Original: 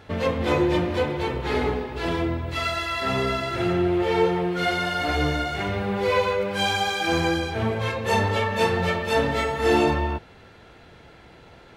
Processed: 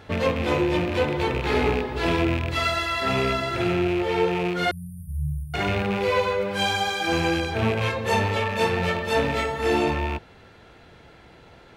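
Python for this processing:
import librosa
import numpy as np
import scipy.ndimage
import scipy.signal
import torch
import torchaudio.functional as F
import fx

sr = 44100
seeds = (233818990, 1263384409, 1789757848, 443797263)

y = fx.rattle_buzz(x, sr, strikes_db=-28.0, level_db=-21.0)
y = fx.rider(y, sr, range_db=10, speed_s=0.5)
y = fx.brickwall_bandstop(y, sr, low_hz=190.0, high_hz=8900.0, at=(4.71, 5.54))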